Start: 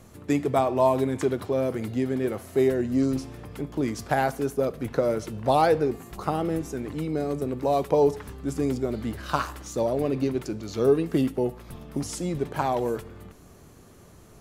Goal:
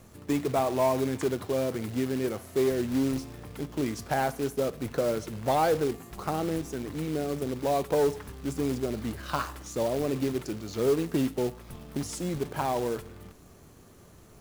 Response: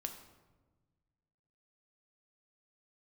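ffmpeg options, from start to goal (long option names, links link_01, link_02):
-af "acrusher=bits=3:mode=log:mix=0:aa=0.000001,aeval=exprs='0.473*(cos(1*acos(clip(val(0)/0.473,-1,1)))-cos(1*PI/2))+0.0531*(cos(5*acos(clip(val(0)/0.473,-1,1)))-cos(5*PI/2))':channel_layout=same,volume=-6.5dB"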